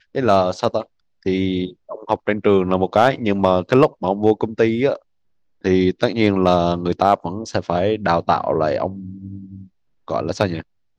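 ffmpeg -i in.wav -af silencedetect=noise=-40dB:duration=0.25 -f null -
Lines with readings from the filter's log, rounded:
silence_start: 0.84
silence_end: 1.23 | silence_duration: 0.39
silence_start: 4.98
silence_end: 5.65 | silence_duration: 0.67
silence_start: 9.67
silence_end: 10.08 | silence_duration: 0.41
silence_start: 10.62
silence_end: 10.98 | silence_duration: 0.36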